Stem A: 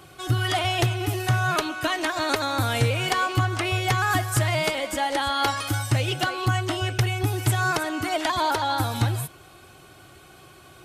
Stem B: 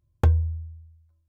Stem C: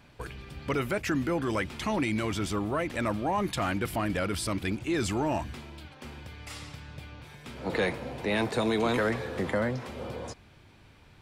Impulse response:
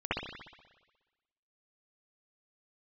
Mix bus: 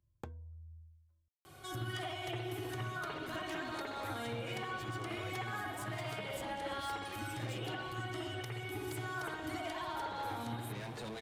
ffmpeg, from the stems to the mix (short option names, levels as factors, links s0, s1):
-filter_complex "[0:a]highshelf=f=8800:g=4.5,bandreject=f=2600:w=16,adelay=1450,volume=0.282,asplit=2[s0][s1];[s1]volume=0.398[s2];[1:a]acontrast=89,volume=0.168[s3];[2:a]asplit=2[s4][s5];[s5]adelay=6.7,afreqshift=-2.9[s6];[s4][s6]amix=inputs=2:normalize=1,adelay=2450,volume=1.12[s7];[s0][s7]amix=inputs=2:normalize=0,asoftclip=type=tanh:threshold=0.0211,acompressor=threshold=0.00708:ratio=6,volume=1[s8];[3:a]atrim=start_sample=2205[s9];[s2][s9]afir=irnorm=-1:irlink=0[s10];[s3][s8][s10]amix=inputs=3:normalize=0,acrossover=split=140[s11][s12];[s11]acompressor=threshold=0.00447:ratio=6[s13];[s13][s12]amix=inputs=2:normalize=0,alimiter=level_in=2.11:limit=0.0631:level=0:latency=1:release=493,volume=0.473"